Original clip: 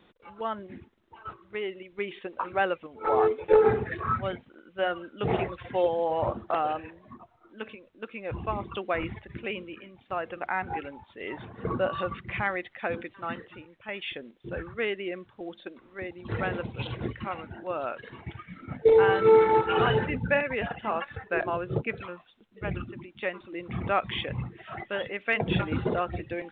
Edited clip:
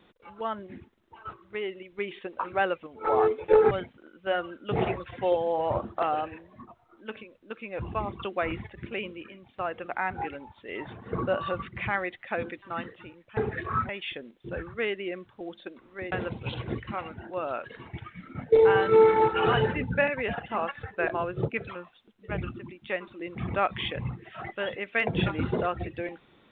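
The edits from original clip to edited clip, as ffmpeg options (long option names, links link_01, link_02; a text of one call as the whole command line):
ffmpeg -i in.wav -filter_complex "[0:a]asplit=5[link_01][link_02][link_03][link_04][link_05];[link_01]atrim=end=3.712[link_06];[link_02]atrim=start=4.228:end=13.892[link_07];[link_03]atrim=start=3.708:end=4.232[link_08];[link_04]atrim=start=13.888:end=16.122[link_09];[link_05]atrim=start=16.448[link_10];[link_06][link_07]acrossfade=duration=0.004:curve1=hsin:curve2=hsin[link_11];[link_11][link_08]acrossfade=duration=0.004:curve1=hsin:curve2=hsin[link_12];[link_12][link_09]acrossfade=duration=0.004:curve1=hsin:curve2=hsin[link_13];[link_13][link_10]acrossfade=duration=0.004:curve1=hsin:curve2=hsin" out.wav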